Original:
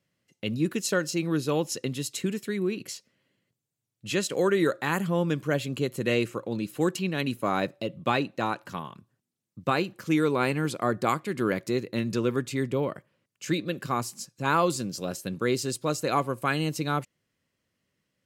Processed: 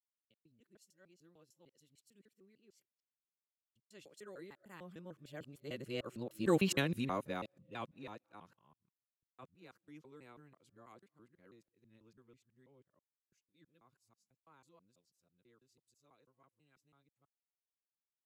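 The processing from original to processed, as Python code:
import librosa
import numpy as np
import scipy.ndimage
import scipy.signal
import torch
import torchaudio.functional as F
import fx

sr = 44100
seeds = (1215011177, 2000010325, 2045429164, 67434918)

y = fx.local_reverse(x, sr, ms=157.0)
y = fx.doppler_pass(y, sr, speed_mps=15, closest_m=2.7, pass_at_s=6.69)
y = fx.band_widen(y, sr, depth_pct=40)
y = y * 10.0 ** (-5.5 / 20.0)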